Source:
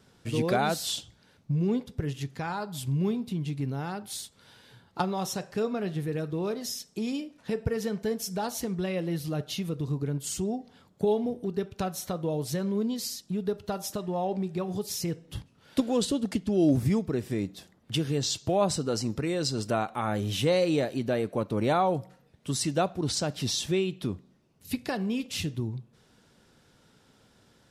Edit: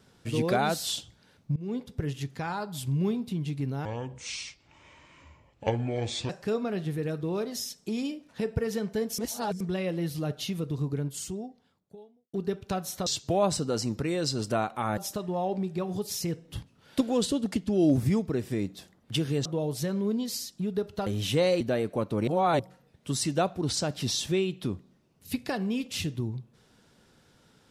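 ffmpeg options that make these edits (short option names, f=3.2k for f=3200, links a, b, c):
-filter_complex "[0:a]asplit=14[a][b][c][d][e][f][g][h][i][j][k][l][m][n];[a]atrim=end=1.56,asetpts=PTS-STARTPTS,afade=t=out:st=1.556:d=0.004:c=hsin:silence=0.0841395[o];[b]atrim=start=1.56:end=3.854,asetpts=PTS-STARTPTS,afade=t=in:d=0.51:c=qsin:silence=0.0841395[p];[c]atrim=start=3.85:end=5.39,asetpts=PTS-STARTPTS,asetrate=27783,aresample=44100[q];[d]atrim=start=5.386:end=8.282[r];[e]atrim=start=8.278:end=8.702,asetpts=PTS-STARTPTS,areverse[s];[f]atrim=start=8.698:end=11.43,asetpts=PTS-STARTPTS,afade=t=out:st=1.372:d=1.36:c=qua[t];[g]atrim=start=11.43:end=12.162,asetpts=PTS-STARTPTS,afade=t=in:d=0.004:c=hsin[u];[h]atrim=start=18.248:end=20.162[v];[i]atrim=start=13.768:end=18.252[w];[j]atrim=start=12.158:end=13.772[x];[k]atrim=start=20.158:end=20.702[y];[l]atrim=start=20.998:end=21.672[z];[m]atrim=start=21.668:end=21.992,asetpts=PTS-STARTPTS,areverse[aa];[n]atrim=start=21.988[ab];[o][p]concat=n=2:v=0:a=1[ac];[ac][q]acrossfade=d=0.004:c1=hsin:c2=hsin[ad];[ad][r]acrossfade=d=0.004:c1=hsin:c2=hsin[ae];[ae][s]acrossfade=d=0.004:c1=hsin:c2=hsin[af];[t][u]concat=n=2:v=0:a=1[ag];[af][ag]acrossfade=d=0.004:c1=hsin:c2=hsin[ah];[ah][v]acrossfade=d=0.004:c1=hsin:c2=hsin[ai];[ai][w]acrossfade=d=0.004:c1=hsin:c2=hsin[aj];[aj][x]acrossfade=d=0.004:c1=hsin:c2=hsin[ak];[ak][y]acrossfade=d=0.004:c1=hsin:c2=hsin[al];[al][z]acrossfade=d=0.004:c1=hsin:c2=hsin[am];[am][aa]acrossfade=d=0.004:c1=hsin:c2=hsin[an];[an][ab]acrossfade=d=0.004:c1=hsin:c2=hsin"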